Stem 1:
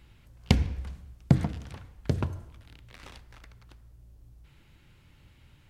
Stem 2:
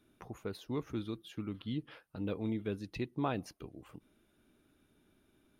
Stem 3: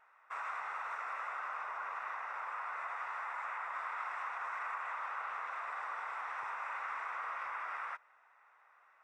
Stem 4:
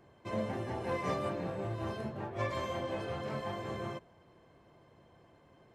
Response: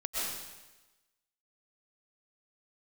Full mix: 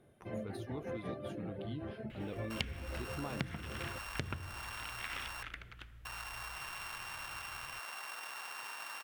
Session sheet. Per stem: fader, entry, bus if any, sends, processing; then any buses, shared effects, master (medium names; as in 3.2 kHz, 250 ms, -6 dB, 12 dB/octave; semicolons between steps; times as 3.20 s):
-2.0 dB, 2.10 s, no send, high-order bell 2.1 kHz +12.5 dB
-5.5 dB, 0.00 s, no send, peaking EQ 9.6 kHz +10.5 dB 0.28 oct
+2.5 dB, 2.20 s, muted 5.43–6.05 s, no send, sorted samples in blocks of 16 samples; compression 3:1, threshold -47 dBFS, peak gain reduction 8.5 dB
-2.0 dB, 0.00 s, no send, reverb removal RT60 0.91 s; low-pass 2 kHz 12 dB/octave; peaking EQ 1 kHz -13 dB 0.53 oct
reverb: none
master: compression 6:1, threshold -36 dBFS, peak gain reduction 20.5 dB